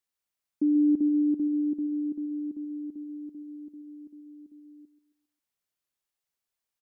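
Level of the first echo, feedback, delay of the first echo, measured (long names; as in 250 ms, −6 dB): −15.0 dB, 41%, 135 ms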